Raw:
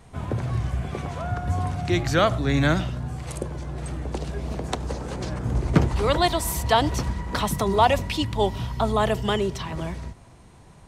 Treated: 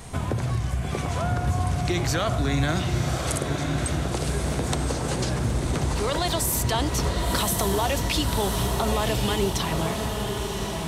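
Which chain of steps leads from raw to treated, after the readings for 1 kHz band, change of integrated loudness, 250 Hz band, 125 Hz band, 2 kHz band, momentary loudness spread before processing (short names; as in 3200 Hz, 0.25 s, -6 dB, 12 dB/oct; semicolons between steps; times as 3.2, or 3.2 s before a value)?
-3.0 dB, -0.5 dB, -0.5 dB, +1.0 dB, -1.0 dB, 11 LU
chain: high shelf 4200 Hz +10 dB; limiter -15.5 dBFS, peak gain reduction 11 dB; compressor 3:1, threshold -34 dBFS, peak gain reduction 10.5 dB; on a send: diffused feedback echo 1.054 s, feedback 58%, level -4.5 dB; on the sum: gain +8.5 dB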